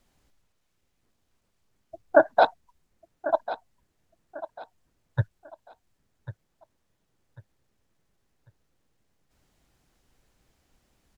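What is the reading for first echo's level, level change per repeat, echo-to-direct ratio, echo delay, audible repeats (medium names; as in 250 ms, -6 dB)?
-14.0 dB, -10.0 dB, -13.5 dB, 1095 ms, 3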